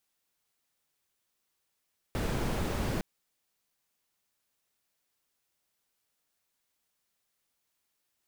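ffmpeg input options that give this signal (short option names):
-f lavfi -i "anoisesrc=c=brown:a=0.132:d=0.86:r=44100:seed=1"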